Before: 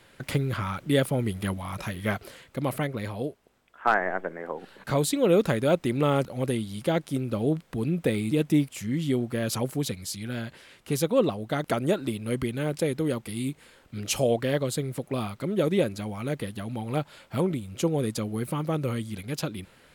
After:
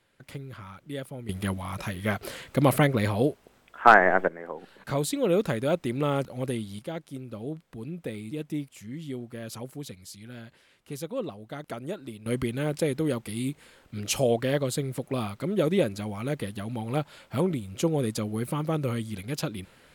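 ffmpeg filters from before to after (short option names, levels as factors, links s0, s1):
-af "asetnsamples=n=441:p=0,asendcmd='1.29 volume volume 0dB;2.23 volume volume 7.5dB;4.28 volume volume -3dB;6.79 volume volume -10dB;12.26 volume volume 0dB',volume=0.224"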